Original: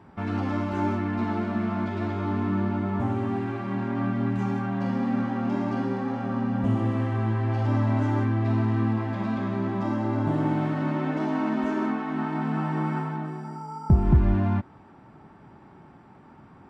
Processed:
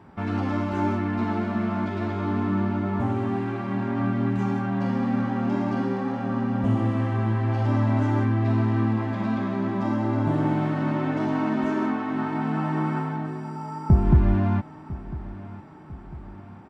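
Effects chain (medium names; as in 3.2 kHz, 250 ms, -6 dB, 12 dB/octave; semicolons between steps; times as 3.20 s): feedback delay 1000 ms, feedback 53%, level -17 dB; trim +1.5 dB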